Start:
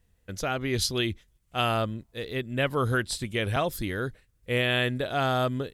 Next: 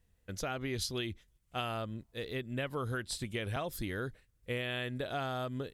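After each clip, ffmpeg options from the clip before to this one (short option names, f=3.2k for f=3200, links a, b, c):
-af "acompressor=threshold=-28dB:ratio=6,volume=-4.5dB"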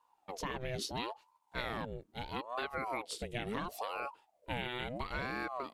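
-af "highshelf=f=8k:g=-6,aeval=exprs='val(0)*sin(2*PI*610*n/s+610*0.6/0.74*sin(2*PI*0.74*n/s))':c=same,volume=1dB"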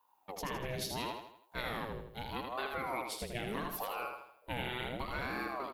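-filter_complex "[0:a]aexciter=amount=5:drive=3:freq=11k,asplit=2[a][b];[b]aecho=0:1:80|160|240|320|400:0.562|0.242|0.104|0.0447|0.0192[c];[a][c]amix=inputs=2:normalize=0,volume=-1dB"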